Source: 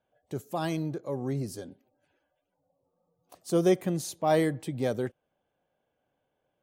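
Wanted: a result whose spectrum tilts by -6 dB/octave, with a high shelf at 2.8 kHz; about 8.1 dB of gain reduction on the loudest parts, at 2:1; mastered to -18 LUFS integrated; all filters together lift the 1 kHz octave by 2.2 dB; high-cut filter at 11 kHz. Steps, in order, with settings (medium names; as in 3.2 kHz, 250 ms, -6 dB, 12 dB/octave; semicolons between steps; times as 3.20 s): low-pass 11 kHz; peaking EQ 1 kHz +4 dB; treble shelf 2.8 kHz -6.5 dB; compression 2:1, threshold -33 dBFS; trim +17.5 dB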